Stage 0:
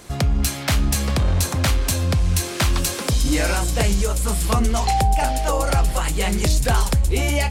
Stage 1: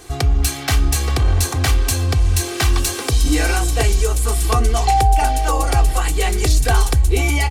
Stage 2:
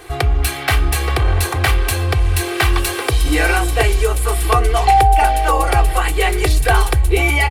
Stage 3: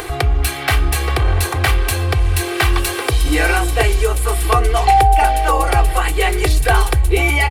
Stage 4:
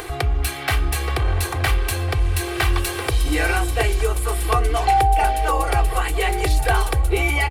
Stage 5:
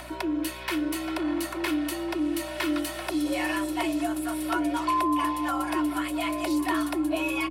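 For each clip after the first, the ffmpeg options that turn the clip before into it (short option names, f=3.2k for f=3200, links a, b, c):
-af "aecho=1:1:2.6:0.81"
-af "firequalizer=gain_entry='entry(130,0);entry(230,-12);entry(330,4);entry(2100,7);entry(6300,-8);entry(10000,1)':delay=0.05:min_phase=1"
-af "acompressor=mode=upward:threshold=-19dB:ratio=2.5"
-filter_complex "[0:a]asplit=2[a][b];[b]adelay=1399,volume=-12dB,highshelf=f=4k:g=-31.5[c];[a][c]amix=inputs=2:normalize=0,volume=-5dB"
-af "afreqshift=250,aeval=exprs='val(0)+0.0141*(sin(2*PI*60*n/s)+sin(2*PI*2*60*n/s)/2+sin(2*PI*3*60*n/s)/3+sin(2*PI*4*60*n/s)/4+sin(2*PI*5*60*n/s)/5)':c=same,volume=-9dB"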